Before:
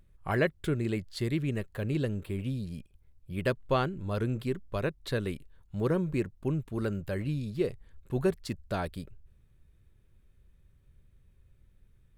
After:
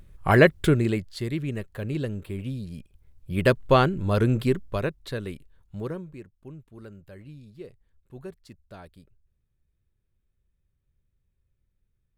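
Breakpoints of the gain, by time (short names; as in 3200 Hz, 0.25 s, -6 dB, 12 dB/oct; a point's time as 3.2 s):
0.65 s +11 dB
1.19 s +1 dB
2.71 s +1 dB
3.45 s +9 dB
4.5 s +9 dB
5.12 s -1 dB
5.76 s -1 dB
6.16 s -12.5 dB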